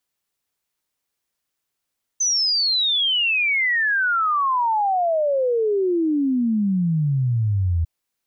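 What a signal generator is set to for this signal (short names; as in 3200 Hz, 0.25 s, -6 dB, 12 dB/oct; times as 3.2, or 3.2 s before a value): log sweep 6200 Hz -> 80 Hz 5.65 s -17 dBFS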